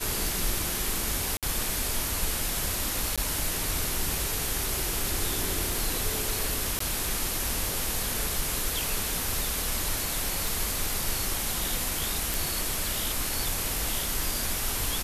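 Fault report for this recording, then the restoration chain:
1.37–1.43 s: dropout 57 ms
3.16–3.18 s: dropout 16 ms
6.79–6.80 s: dropout 14 ms
10.48 s: pop
12.34 s: pop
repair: de-click; interpolate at 1.37 s, 57 ms; interpolate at 3.16 s, 16 ms; interpolate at 6.79 s, 14 ms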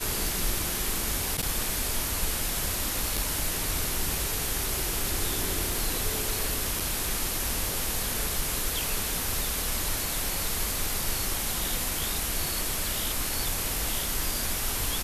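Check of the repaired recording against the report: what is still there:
nothing left

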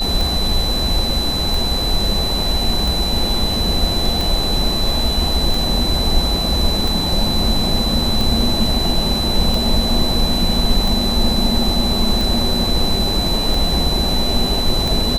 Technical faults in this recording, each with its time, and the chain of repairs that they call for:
tick 45 rpm
whine 4 kHz -20 dBFS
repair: de-click; band-stop 4 kHz, Q 30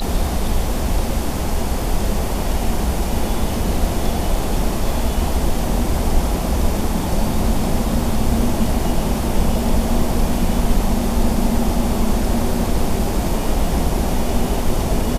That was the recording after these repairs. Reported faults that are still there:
nothing left

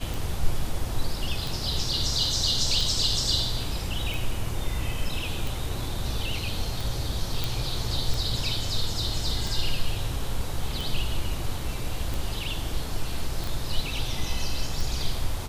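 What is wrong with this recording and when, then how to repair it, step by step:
tick 45 rpm
7.44 s: pop
13.44 s: pop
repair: de-click

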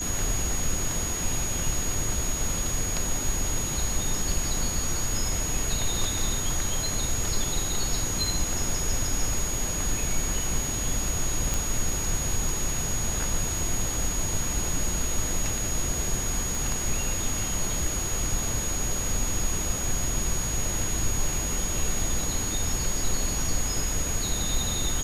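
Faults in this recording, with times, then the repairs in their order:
whine 6.7 kHz -30 dBFS
11.54 s: pop
16.55 s: pop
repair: de-click; band-stop 6.7 kHz, Q 30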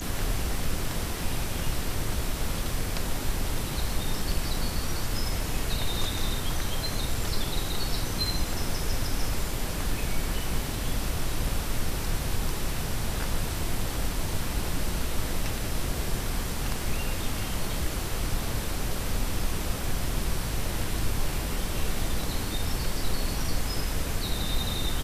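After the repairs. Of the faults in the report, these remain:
16.55 s: pop

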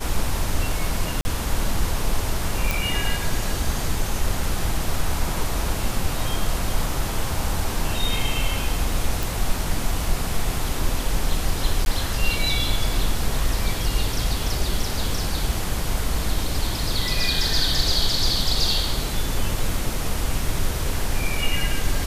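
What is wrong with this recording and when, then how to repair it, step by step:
1.21–1.25 s: dropout 40 ms
2.71 s: pop
9.23 s: pop
11.85–11.86 s: dropout 11 ms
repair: de-click; interpolate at 1.21 s, 40 ms; interpolate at 11.85 s, 11 ms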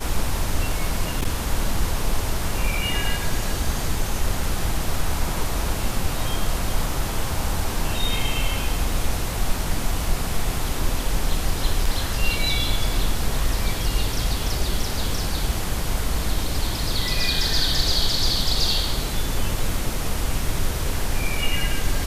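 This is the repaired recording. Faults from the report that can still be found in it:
nothing left

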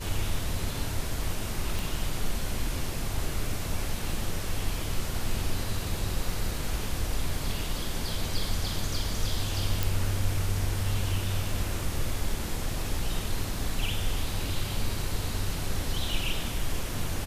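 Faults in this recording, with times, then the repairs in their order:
1.79 s: pop
9.83 s: pop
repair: de-click

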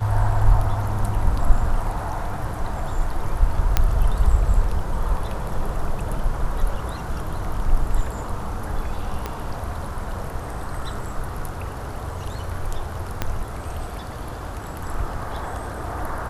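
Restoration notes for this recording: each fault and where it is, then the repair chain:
3.77 s: pop -3 dBFS
9.26 s: pop -12 dBFS
13.22 s: pop -8 dBFS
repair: de-click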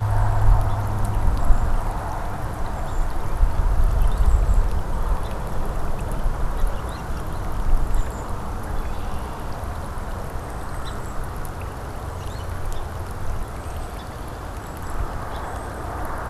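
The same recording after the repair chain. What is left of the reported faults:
9.26 s: pop
13.22 s: pop

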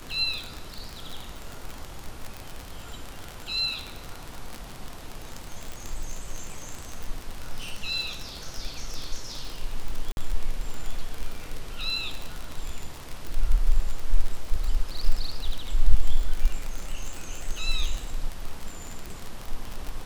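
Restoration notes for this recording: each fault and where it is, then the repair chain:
crackle 42 per s -26 dBFS
5.72 s: pop
10.12–10.17 s: dropout 51 ms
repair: de-click; interpolate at 10.12 s, 51 ms

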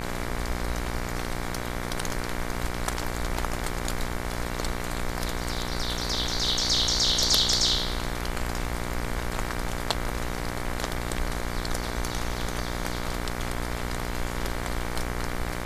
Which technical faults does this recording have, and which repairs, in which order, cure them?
buzz 60 Hz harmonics 39 -33 dBFS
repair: de-hum 60 Hz, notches 39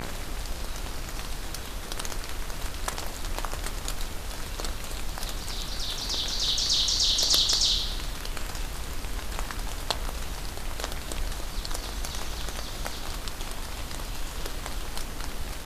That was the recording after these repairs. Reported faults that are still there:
nothing left

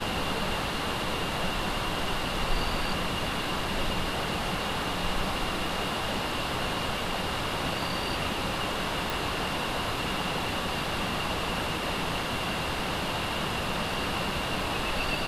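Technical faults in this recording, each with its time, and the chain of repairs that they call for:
9.10 s: pop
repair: de-click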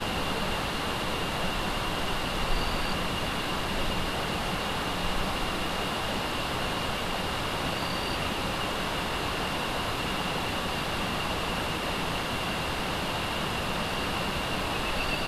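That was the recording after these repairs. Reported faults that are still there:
nothing left

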